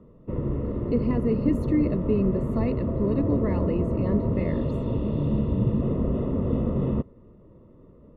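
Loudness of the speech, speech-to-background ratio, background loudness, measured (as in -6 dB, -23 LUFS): -28.0 LUFS, -1.0 dB, -27.0 LUFS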